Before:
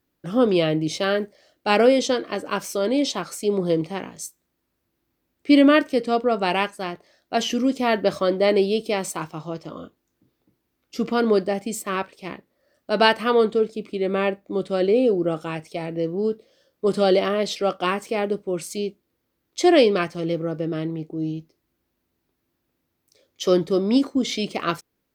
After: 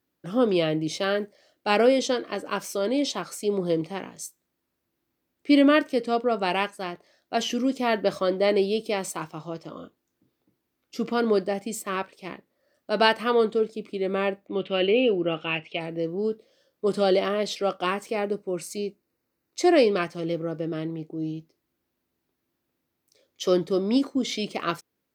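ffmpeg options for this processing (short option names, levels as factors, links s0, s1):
-filter_complex "[0:a]asplit=3[s0][s1][s2];[s0]afade=t=out:st=14.47:d=0.02[s3];[s1]lowpass=f=2800:t=q:w=6.5,afade=t=in:st=14.47:d=0.02,afade=t=out:st=15.79:d=0.02[s4];[s2]afade=t=in:st=15.79:d=0.02[s5];[s3][s4][s5]amix=inputs=3:normalize=0,asettb=1/sr,asplit=3[s6][s7][s8];[s6]atrim=end=18.134[s9];[s7]atrim=start=18.13:end=19.87,asetpts=PTS-STARTPTS,afade=t=in:d=0.004:c=qsin,afade=t=out:st=1.736:d=0.004:c=qsin,bandreject=f=3300:w=5.4[s10];[s8]atrim=start=19.866[s11];[s9][s10]acrossfade=d=0.004:c1=hsin:c2=qsin[s12];[s12][s11]acrossfade=d=0.004:c1=qsin:c2=hsin,highpass=f=110:p=1,volume=0.708"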